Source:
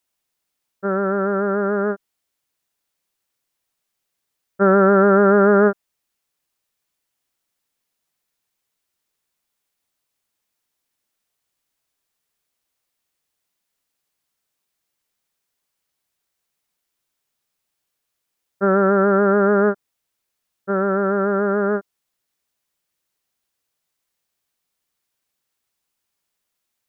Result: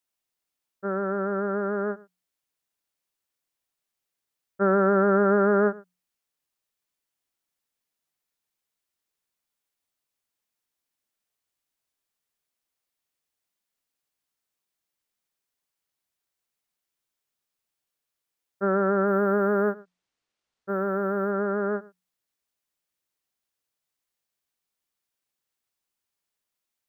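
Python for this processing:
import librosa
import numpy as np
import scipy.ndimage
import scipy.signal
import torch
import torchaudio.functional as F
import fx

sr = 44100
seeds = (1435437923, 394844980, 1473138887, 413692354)

y = fx.hum_notches(x, sr, base_hz=60, count=3)
y = y + 10.0 ** (-21.5 / 20.0) * np.pad(y, (int(111 * sr / 1000.0), 0))[:len(y)]
y = fx.resample_linear(y, sr, factor=3, at=(19.07, 21.31))
y = y * librosa.db_to_amplitude(-7.0)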